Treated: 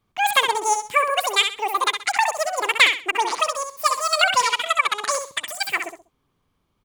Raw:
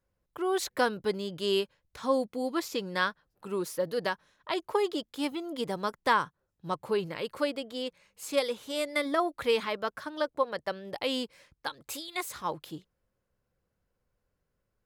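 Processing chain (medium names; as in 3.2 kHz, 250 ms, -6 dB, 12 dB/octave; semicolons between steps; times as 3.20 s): dynamic bell 1.3 kHz, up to +5 dB, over -44 dBFS, Q 0.94; wide varispeed 2.17×; feedback delay 65 ms, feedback 27%, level -7 dB; trim +7.5 dB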